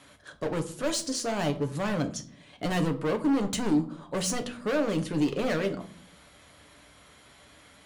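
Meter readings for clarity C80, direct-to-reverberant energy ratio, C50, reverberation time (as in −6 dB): 18.5 dB, 5.5 dB, 14.0 dB, 0.50 s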